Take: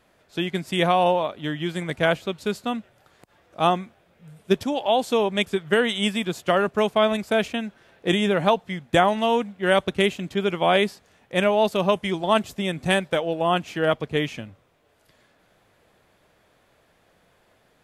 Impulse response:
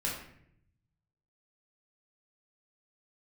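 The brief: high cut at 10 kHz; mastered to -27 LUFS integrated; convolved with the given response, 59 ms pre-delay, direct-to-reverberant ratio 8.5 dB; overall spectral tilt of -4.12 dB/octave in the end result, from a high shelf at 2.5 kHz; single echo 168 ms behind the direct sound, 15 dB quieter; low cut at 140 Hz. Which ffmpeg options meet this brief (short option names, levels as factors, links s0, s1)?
-filter_complex "[0:a]highpass=140,lowpass=10000,highshelf=f=2500:g=7.5,aecho=1:1:168:0.178,asplit=2[s0][s1];[1:a]atrim=start_sample=2205,adelay=59[s2];[s1][s2]afir=irnorm=-1:irlink=0,volume=0.211[s3];[s0][s3]amix=inputs=2:normalize=0,volume=0.531"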